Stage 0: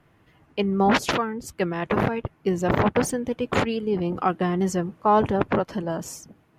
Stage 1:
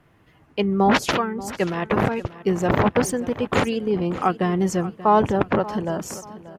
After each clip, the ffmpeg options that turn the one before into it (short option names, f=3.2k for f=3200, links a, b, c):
-af "aecho=1:1:584|1168|1752:0.15|0.0479|0.0153,volume=2dB"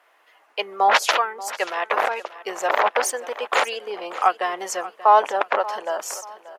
-af "highpass=f=580:w=0.5412,highpass=f=580:w=1.3066,volume=4dB"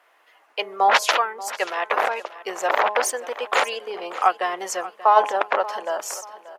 -af "bandreject=f=208.9:t=h:w=4,bandreject=f=417.8:t=h:w=4,bandreject=f=626.7:t=h:w=4,bandreject=f=835.6:t=h:w=4,bandreject=f=1.0445k:t=h:w=4"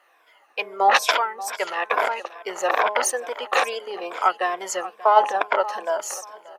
-af "afftfilt=real='re*pow(10,10/40*sin(2*PI*(1.7*log(max(b,1)*sr/1024/100)/log(2)-(-2.3)*(pts-256)/sr)))':imag='im*pow(10,10/40*sin(2*PI*(1.7*log(max(b,1)*sr/1024/100)/log(2)-(-2.3)*(pts-256)/sr)))':win_size=1024:overlap=0.75,volume=-1.5dB"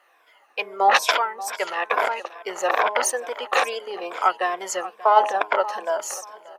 -af "bandreject=f=317.2:t=h:w=4,bandreject=f=634.4:t=h:w=4,bandreject=f=951.6:t=h:w=4"